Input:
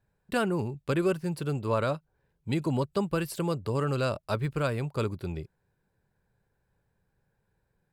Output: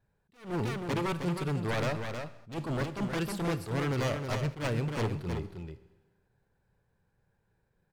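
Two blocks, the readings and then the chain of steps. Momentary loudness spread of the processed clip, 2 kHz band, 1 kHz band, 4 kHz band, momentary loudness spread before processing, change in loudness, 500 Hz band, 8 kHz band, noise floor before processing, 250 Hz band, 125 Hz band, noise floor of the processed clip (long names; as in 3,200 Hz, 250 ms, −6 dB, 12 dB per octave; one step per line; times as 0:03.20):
10 LU, 0.0 dB, −2.5 dB, 0.0 dB, 8 LU, −3.0 dB, −4.5 dB, −0.5 dB, −77 dBFS, −2.5 dB, −1.5 dB, −75 dBFS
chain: high-shelf EQ 6,900 Hz −6.5 dB
wave folding −26 dBFS
on a send: single-tap delay 315 ms −6.5 dB
on the sum: four-comb reverb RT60 1.2 s, combs from 27 ms, DRR 14 dB
level that may rise only so fast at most 170 dB per second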